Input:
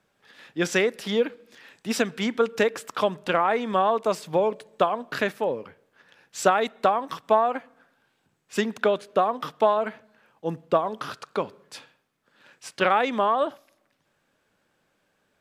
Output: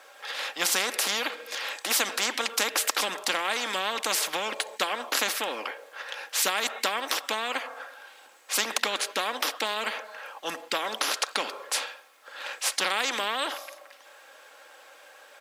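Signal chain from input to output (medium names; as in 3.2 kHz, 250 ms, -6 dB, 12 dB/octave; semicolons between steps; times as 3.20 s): high-pass 510 Hz 24 dB/octave; comb 3.7 ms, depth 42%; spectrum-flattening compressor 4:1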